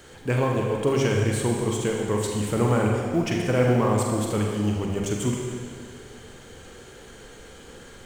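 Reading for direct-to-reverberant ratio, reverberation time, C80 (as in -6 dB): -0.5 dB, 2.0 s, 2.5 dB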